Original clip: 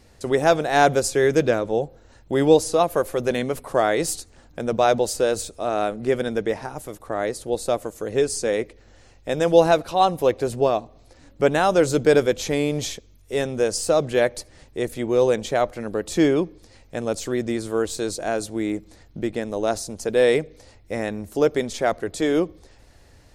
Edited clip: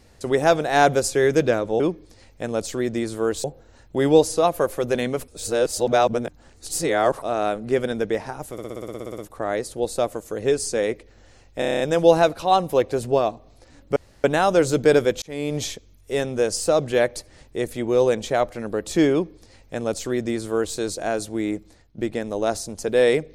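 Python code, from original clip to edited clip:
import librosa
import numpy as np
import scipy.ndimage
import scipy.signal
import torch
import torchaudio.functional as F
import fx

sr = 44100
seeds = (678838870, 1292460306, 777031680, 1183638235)

y = fx.edit(x, sr, fx.reverse_span(start_s=3.64, length_s=1.94),
    fx.stutter(start_s=6.88, slice_s=0.06, count=12),
    fx.stutter(start_s=9.29, slice_s=0.03, count=8),
    fx.insert_room_tone(at_s=11.45, length_s=0.28),
    fx.fade_in_span(start_s=12.43, length_s=0.35),
    fx.duplicate(start_s=16.33, length_s=1.64, to_s=1.8),
    fx.fade_out_to(start_s=18.76, length_s=0.43, floor_db=-13.5), tone=tone)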